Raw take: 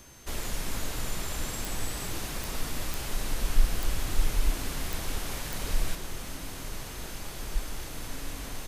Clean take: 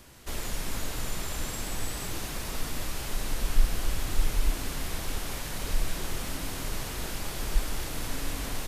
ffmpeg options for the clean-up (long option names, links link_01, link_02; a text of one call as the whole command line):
ffmpeg -i in.wav -af "adeclick=threshold=4,bandreject=frequency=6300:width=30,asetnsamples=nb_out_samples=441:pad=0,asendcmd='5.95 volume volume 4.5dB',volume=0dB" out.wav